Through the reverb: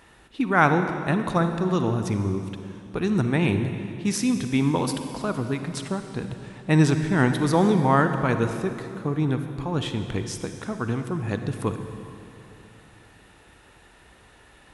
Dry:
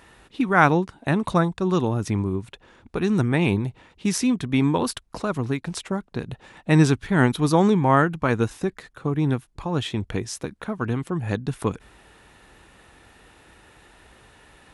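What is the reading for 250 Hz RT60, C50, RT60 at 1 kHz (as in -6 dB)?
3.3 s, 7.5 dB, 2.7 s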